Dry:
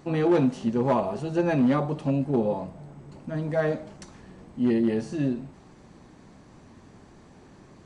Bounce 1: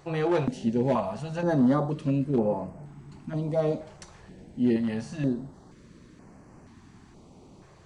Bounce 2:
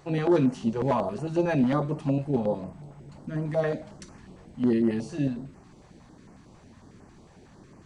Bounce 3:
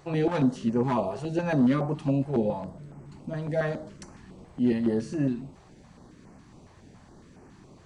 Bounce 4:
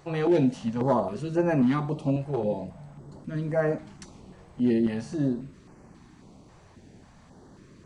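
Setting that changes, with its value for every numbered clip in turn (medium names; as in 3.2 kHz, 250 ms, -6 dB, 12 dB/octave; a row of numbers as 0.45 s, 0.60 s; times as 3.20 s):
step-sequenced notch, rate: 2.1 Hz, 11 Hz, 7.2 Hz, 3.7 Hz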